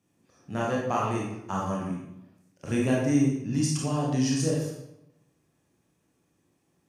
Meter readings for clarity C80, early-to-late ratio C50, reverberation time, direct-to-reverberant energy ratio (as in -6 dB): 4.5 dB, 0.5 dB, 0.85 s, -4.0 dB